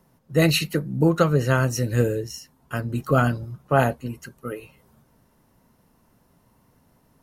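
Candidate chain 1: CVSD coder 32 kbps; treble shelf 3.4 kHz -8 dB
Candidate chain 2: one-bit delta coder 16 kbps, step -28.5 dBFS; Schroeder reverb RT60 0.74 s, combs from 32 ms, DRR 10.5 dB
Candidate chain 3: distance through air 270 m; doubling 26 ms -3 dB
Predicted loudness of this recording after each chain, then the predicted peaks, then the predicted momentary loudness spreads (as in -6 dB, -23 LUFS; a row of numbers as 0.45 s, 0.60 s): -24.0 LUFS, -25.5 LUFS, -22.0 LUFS; -6.5 dBFS, -6.5 dBFS, -5.0 dBFS; 15 LU, 14 LU, 15 LU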